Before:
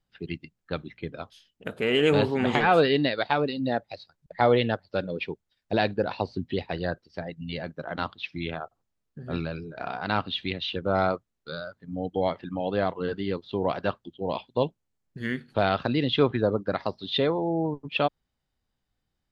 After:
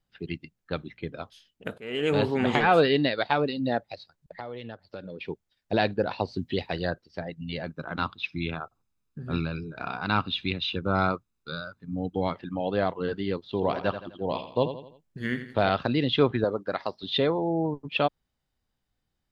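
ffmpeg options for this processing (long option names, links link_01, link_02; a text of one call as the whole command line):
ffmpeg -i in.wav -filter_complex "[0:a]asplit=3[link_01][link_02][link_03];[link_01]afade=type=out:start_time=3.94:duration=0.02[link_04];[link_02]acompressor=threshold=-35dB:ratio=6:attack=3.2:release=140:knee=1:detection=peak,afade=type=in:start_time=3.94:duration=0.02,afade=type=out:start_time=5.24:duration=0.02[link_05];[link_03]afade=type=in:start_time=5.24:duration=0.02[link_06];[link_04][link_05][link_06]amix=inputs=3:normalize=0,asettb=1/sr,asplit=3[link_07][link_08][link_09];[link_07]atrim=end=6.284[link_10];[link_08]atrim=start=6.28:end=6.9,asetpts=PTS-STARTPTS,afade=type=in:duration=0.004:curve=qsin,afade=type=out:start_time=0.616:duration=0.004:curve=qsin,highshelf=frequency=3700:gain=7.5[link_11];[link_09]atrim=start=6.896[link_12];[link_10][link_11]acrossfade=duration=0.004:curve1=hsin:curve2=qsin[link_13];[link_13][link_12]acrossfade=duration=0.004:curve1=qsin:curve2=hsin,asettb=1/sr,asplit=3[link_14][link_15][link_16];[link_14]atrim=end=7.674[link_17];[link_15]atrim=start=7.67:end=12.35,asetpts=PTS-STARTPTS,afade=type=in:duration=0.004:curve=qsin,afade=type=out:start_time=4.676:duration=0.004:curve=qsin,aecho=1:1:0.8:0.47,atrim=end_sample=206388[link_18];[link_16]atrim=start=12.346[link_19];[link_17][link_18]acrossfade=duration=0.004:curve1=hsin:curve2=qsin[link_20];[link_20][link_19]acrossfade=duration=0.004:curve1=qsin:curve2=hsin,asettb=1/sr,asplit=3[link_21][link_22][link_23];[link_21]atrim=end=13.454[link_24];[link_22]atrim=start=13.45:end=15.7,asetpts=PTS-STARTPTS,afade=type=in:duration=0.004:curve=qsin,afade=type=out:start_time=2.246:duration=0.004:curve=qsin,aecho=1:1:84|168|252|336:0.299|0.125|0.0527|0.0221,atrim=end_sample=99225[link_25];[link_23]atrim=start=15.696[link_26];[link_24][link_25]acrossfade=duration=0.004:curve1=hsin:curve2=qsin[link_27];[link_27][link_26]acrossfade=duration=0.004:curve1=qsin:curve2=hsin,asettb=1/sr,asplit=3[link_28][link_29][link_30];[link_28]atrim=end=16.444[link_31];[link_29]atrim=start=16.44:end=17.03,asetpts=PTS-STARTPTS,afade=type=in:duration=0.004:curve=qsin,afade=type=out:start_time=0.586:duration=0.004:curve=qsin,lowshelf=frequency=240:gain=-12[link_32];[link_30]atrim=start=17.026[link_33];[link_31][link_32]acrossfade=duration=0.004:curve1=hsin:curve2=qsin[link_34];[link_34][link_33]acrossfade=duration=0.004:curve1=qsin:curve2=hsin,asplit=2[link_35][link_36];[link_35]atrim=end=1.78,asetpts=PTS-STARTPTS,afade=type=out:start_time=1.776:duration=0.004:curve=hsin:silence=0.0944061[link_37];[link_36]atrim=start=1.78,asetpts=PTS-STARTPTS,afade=type=in:duration=0.52:silence=0.0944061[link_38];[link_37][link_38]concat=n=2:v=0:a=1" out.wav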